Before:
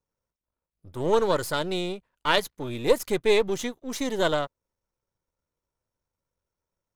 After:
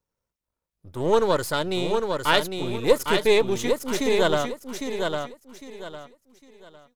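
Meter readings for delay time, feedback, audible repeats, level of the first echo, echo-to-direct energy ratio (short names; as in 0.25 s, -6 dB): 0.805 s, 28%, 3, -5.0 dB, -4.5 dB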